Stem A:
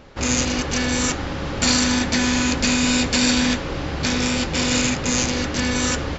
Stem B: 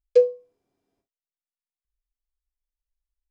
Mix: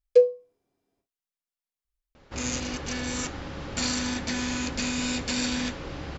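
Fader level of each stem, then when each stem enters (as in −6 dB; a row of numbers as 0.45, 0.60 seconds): −10.0, −0.5 decibels; 2.15, 0.00 seconds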